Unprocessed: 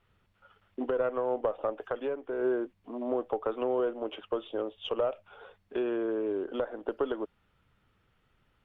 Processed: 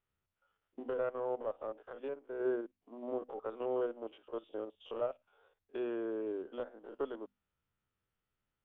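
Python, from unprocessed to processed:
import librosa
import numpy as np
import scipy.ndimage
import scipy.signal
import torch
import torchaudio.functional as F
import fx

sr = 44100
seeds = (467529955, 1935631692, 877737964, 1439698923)

y = fx.spec_steps(x, sr, hold_ms=50)
y = fx.hum_notches(y, sr, base_hz=50, count=5)
y = fx.upward_expand(y, sr, threshold_db=-51.0, expansion=1.5)
y = y * 10.0 ** (-4.0 / 20.0)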